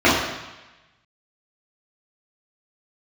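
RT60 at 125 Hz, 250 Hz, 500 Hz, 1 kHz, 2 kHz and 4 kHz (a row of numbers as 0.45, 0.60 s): 1.2, 0.95, 1.0, 1.1, 1.2, 1.1 s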